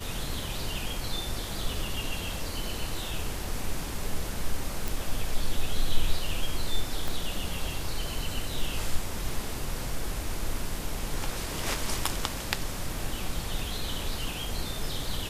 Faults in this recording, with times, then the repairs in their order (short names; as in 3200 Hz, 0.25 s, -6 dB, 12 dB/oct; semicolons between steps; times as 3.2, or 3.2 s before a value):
4.88 pop
7.08 pop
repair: de-click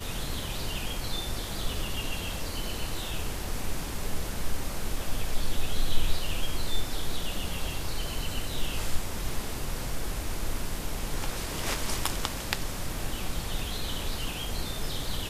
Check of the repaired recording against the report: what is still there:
7.08 pop